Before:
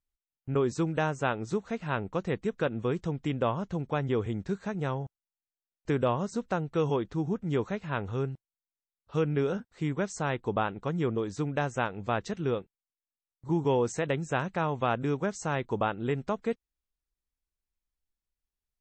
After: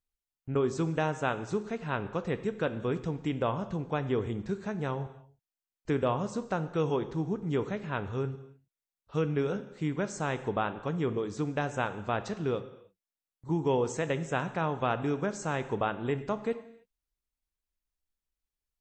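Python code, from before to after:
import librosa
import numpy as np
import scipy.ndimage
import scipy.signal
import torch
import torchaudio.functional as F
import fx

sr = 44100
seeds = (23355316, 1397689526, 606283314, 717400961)

y = fx.rev_gated(x, sr, seeds[0], gate_ms=340, shape='falling', drr_db=10.5)
y = y * librosa.db_to_amplitude(-1.5)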